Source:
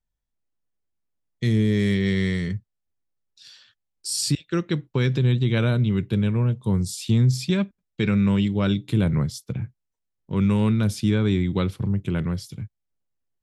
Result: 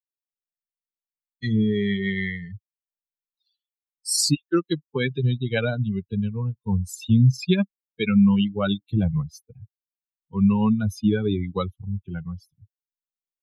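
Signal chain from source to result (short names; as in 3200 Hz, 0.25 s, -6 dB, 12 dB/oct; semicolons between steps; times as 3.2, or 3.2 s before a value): per-bin expansion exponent 3; dynamic EQ 120 Hz, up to -4 dB, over -41 dBFS, Q 1.5; gain +8 dB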